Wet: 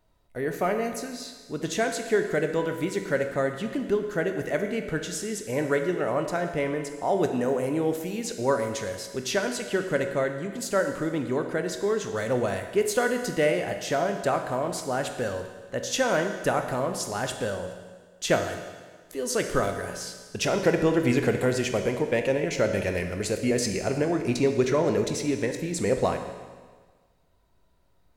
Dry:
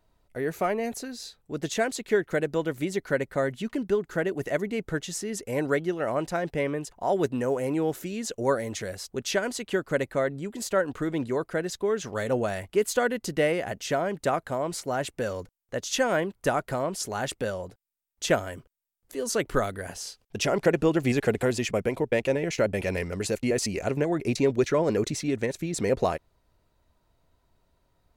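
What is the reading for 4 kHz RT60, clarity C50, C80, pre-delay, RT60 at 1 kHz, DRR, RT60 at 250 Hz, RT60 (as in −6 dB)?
1.5 s, 7.5 dB, 9.0 dB, 16 ms, 1.5 s, 5.5 dB, 1.5 s, 1.5 s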